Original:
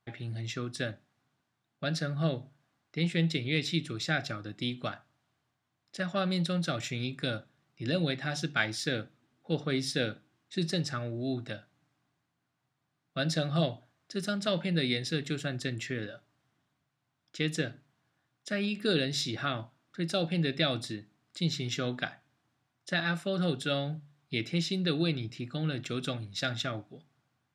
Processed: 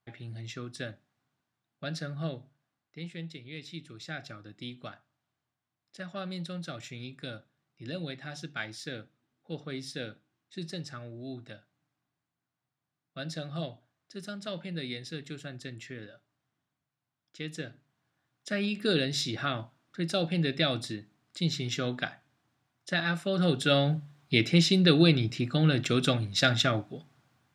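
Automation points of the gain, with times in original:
2.14 s -4 dB
3.43 s -14 dB
4.38 s -7.5 dB
17.5 s -7.5 dB
18.54 s +1 dB
23.2 s +1 dB
23.88 s +8 dB

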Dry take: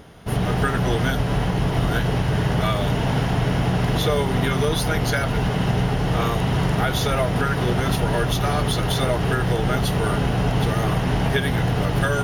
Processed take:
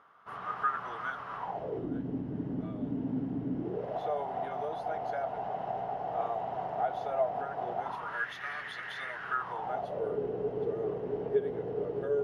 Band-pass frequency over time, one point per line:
band-pass, Q 6.2
1.36 s 1200 Hz
1.92 s 270 Hz
3.55 s 270 Hz
3.99 s 720 Hz
7.77 s 720 Hz
8.29 s 1800 Hz
9.09 s 1800 Hz
10.17 s 430 Hz

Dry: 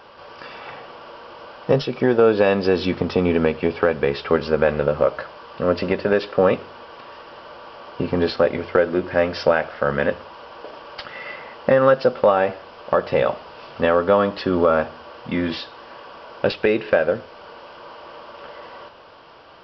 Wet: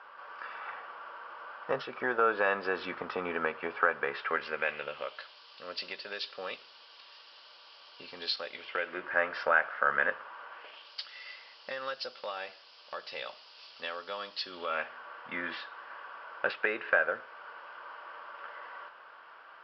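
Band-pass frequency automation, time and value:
band-pass, Q 2.2
4.06 s 1400 Hz
5.41 s 4300 Hz
8.49 s 4300 Hz
9.11 s 1500 Hz
10.5 s 1500 Hz
10.93 s 4600 Hz
14.49 s 4600 Hz
15 s 1500 Hz

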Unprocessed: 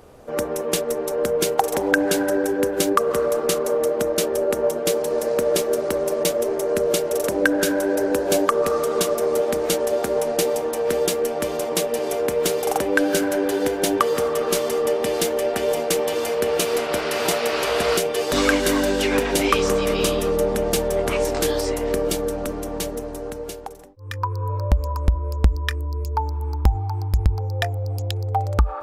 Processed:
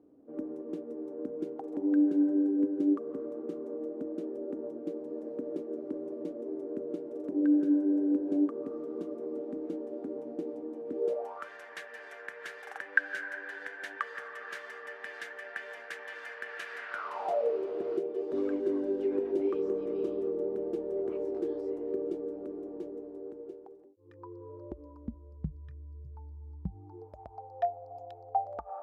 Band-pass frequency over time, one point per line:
band-pass, Q 8
10.93 s 290 Hz
11.5 s 1700 Hz
16.88 s 1700 Hz
17.63 s 360 Hz
24.7 s 360 Hz
25.63 s 130 Hz
26.57 s 130 Hz
27.19 s 700 Hz

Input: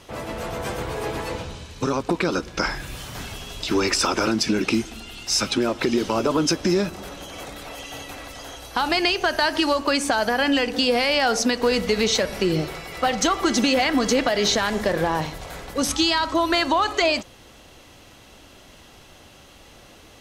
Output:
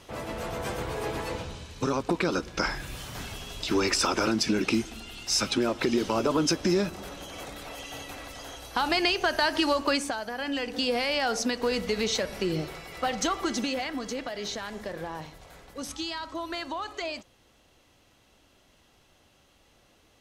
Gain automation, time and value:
9.93 s -4 dB
10.24 s -14 dB
10.83 s -7 dB
13.34 s -7 dB
14.05 s -14 dB

